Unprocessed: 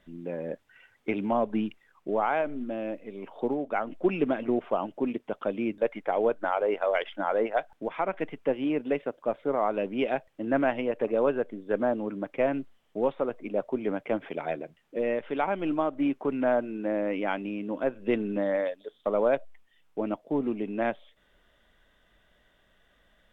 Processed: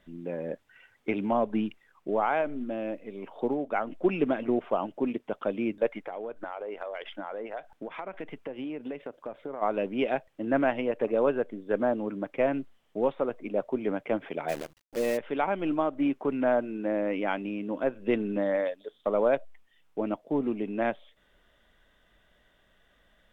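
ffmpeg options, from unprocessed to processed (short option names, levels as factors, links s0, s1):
-filter_complex "[0:a]asplit=3[s0][s1][s2];[s0]afade=t=out:st=5.98:d=0.02[s3];[s1]acompressor=threshold=0.0251:ratio=10:attack=3.2:release=140:knee=1:detection=peak,afade=t=in:st=5.98:d=0.02,afade=t=out:st=9.61:d=0.02[s4];[s2]afade=t=in:st=9.61:d=0.02[s5];[s3][s4][s5]amix=inputs=3:normalize=0,asplit=3[s6][s7][s8];[s6]afade=t=out:st=14.48:d=0.02[s9];[s7]acrusher=bits=7:dc=4:mix=0:aa=0.000001,afade=t=in:st=14.48:d=0.02,afade=t=out:st=15.16:d=0.02[s10];[s8]afade=t=in:st=15.16:d=0.02[s11];[s9][s10][s11]amix=inputs=3:normalize=0"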